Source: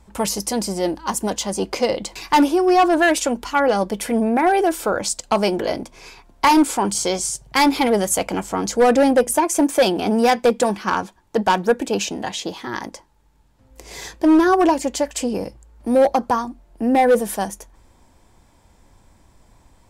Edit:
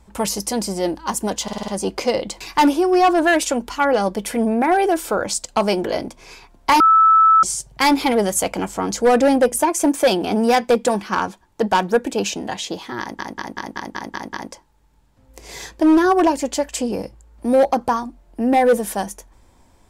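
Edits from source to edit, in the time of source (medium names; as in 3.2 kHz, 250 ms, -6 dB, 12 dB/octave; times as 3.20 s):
1.43 s: stutter 0.05 s, 6 plays
6.55–7.18 s: bleep 1.31 kHz -8.5 dBFS
12.75 s: stutter 0.19 s, 8 plays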